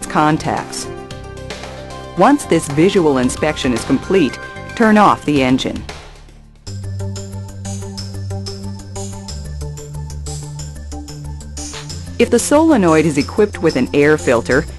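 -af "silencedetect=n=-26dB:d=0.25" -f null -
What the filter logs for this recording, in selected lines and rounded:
silence_start: 6.07
silence_end: 6.67 | silence_duration: 0.60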